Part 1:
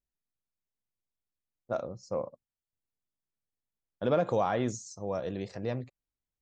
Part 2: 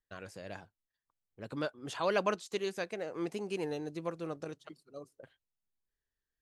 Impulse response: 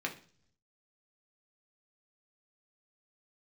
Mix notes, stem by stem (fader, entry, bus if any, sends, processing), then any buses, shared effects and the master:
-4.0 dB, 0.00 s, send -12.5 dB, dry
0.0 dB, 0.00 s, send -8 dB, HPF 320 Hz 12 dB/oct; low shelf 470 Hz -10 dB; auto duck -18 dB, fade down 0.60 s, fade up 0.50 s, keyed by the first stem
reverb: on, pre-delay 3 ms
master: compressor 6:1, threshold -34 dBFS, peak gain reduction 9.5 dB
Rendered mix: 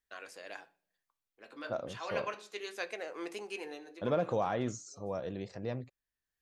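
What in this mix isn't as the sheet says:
stem 1: send off; master: missing compressor 6:1, threshold -34 dBFS, peak gain reduction 9.5 dB

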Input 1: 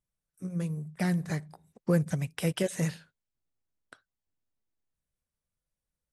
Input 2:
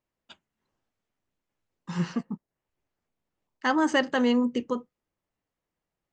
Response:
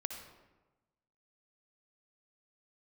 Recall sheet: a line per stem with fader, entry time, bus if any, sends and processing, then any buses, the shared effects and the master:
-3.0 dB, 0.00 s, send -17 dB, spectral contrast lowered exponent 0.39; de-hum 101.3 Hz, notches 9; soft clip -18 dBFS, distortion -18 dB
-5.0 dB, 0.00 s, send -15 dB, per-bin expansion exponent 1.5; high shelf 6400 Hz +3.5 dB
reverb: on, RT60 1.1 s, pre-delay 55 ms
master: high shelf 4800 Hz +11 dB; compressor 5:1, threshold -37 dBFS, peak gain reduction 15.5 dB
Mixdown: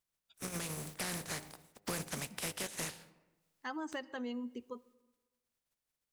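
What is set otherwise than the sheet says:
stem 2 -5.0 dB -> -14.0 dB; master: missing high shelf 4800 Hz +11 dB

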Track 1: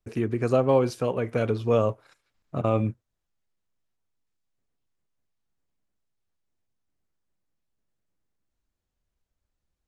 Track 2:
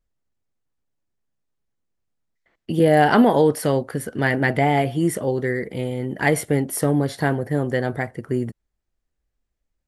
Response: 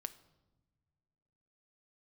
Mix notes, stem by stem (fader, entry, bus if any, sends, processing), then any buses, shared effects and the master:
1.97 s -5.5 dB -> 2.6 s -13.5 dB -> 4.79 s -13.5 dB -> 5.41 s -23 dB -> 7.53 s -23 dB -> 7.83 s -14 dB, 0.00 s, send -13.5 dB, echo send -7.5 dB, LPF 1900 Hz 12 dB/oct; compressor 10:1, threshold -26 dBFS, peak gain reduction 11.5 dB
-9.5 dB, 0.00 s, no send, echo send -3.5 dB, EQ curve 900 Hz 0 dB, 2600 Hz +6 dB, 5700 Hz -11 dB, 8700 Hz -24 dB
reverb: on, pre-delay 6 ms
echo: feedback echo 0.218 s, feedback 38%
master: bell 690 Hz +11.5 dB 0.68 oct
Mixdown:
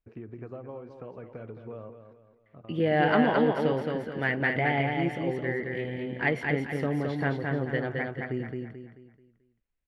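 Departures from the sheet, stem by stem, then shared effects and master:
stem 1 -5.5 dB -> -12.5 dB; master: missing bell 690 Hz +11.5 dB 0.68 oct

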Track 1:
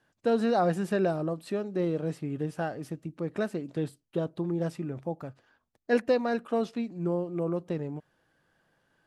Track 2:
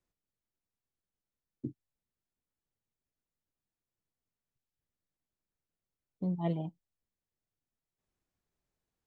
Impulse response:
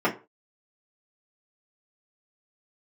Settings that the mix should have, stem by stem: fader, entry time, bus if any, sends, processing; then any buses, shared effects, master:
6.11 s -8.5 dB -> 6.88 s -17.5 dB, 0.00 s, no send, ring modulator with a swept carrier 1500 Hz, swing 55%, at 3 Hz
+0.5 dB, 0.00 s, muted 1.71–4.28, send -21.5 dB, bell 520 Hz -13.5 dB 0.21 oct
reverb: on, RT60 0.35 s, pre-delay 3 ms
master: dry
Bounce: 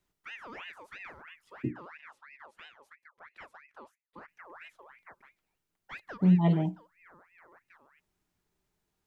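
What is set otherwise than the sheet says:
stem 1 -8.5 dB -> -17.5 dB; stem 2 +0.5 dB -> +6.5 dB

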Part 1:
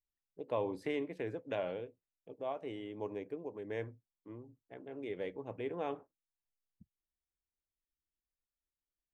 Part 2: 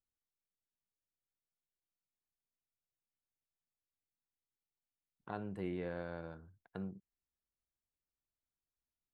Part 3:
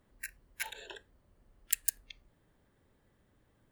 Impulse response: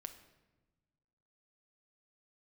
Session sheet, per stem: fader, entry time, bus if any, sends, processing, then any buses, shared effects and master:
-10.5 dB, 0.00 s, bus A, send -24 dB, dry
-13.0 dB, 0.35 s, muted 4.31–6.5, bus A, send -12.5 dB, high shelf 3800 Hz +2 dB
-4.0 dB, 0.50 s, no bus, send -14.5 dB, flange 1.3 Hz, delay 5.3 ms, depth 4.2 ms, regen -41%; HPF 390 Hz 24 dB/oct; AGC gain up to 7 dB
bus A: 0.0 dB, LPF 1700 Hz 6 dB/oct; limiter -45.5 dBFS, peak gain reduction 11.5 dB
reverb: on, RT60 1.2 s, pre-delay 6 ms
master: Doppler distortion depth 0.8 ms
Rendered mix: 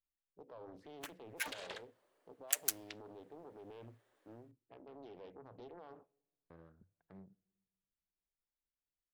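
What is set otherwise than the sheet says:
stem 1 -10.5 dB -> -4.5 dB; stem 3: entry 0.50 s -> 0.80 s

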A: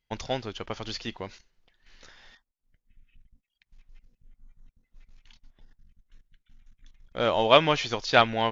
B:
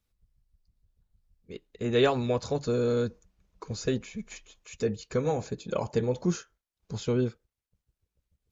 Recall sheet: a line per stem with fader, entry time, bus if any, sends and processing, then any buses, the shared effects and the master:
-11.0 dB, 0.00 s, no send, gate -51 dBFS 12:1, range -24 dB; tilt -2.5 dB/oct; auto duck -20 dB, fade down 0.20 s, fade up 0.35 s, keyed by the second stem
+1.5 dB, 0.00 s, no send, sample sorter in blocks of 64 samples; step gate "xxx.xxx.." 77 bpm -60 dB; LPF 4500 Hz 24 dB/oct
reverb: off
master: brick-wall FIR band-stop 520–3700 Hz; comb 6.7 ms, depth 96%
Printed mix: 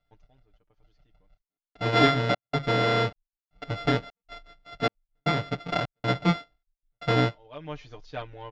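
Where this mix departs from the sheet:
stem A -11.0 dB -> -20.0 dB; master: missing brick-wall FIR band-stop 520–3700 Hz

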